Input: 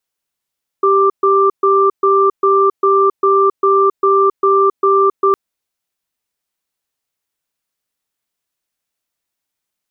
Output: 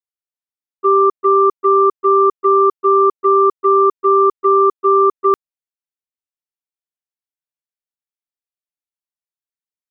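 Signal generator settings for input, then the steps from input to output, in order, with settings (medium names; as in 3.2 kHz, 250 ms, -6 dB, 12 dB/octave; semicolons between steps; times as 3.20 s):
cadence 392 Hz, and 1.18 kHz, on 0.27 s, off 0.13 s, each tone -11 dBFS 4.51 s
gate -13 dBFS, range -20 dB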